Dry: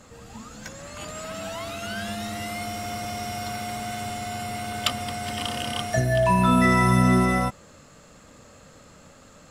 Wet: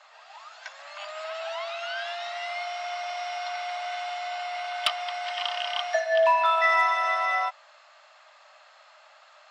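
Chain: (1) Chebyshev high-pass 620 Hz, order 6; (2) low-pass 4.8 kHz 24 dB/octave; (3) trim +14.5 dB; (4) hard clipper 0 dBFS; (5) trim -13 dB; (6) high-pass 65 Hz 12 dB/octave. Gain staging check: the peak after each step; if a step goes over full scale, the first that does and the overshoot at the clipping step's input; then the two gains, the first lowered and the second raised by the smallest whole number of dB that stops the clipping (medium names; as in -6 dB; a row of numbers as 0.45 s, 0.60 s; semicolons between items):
-6.5 dBFS, -9.0 dBFS, +5.5 dBFS, 0.0 dBFS, -13.0 dBFS, -12.5 dBFS; step 3, 5.5 dB; step 3 +8.5 dB, step 5 -7 dB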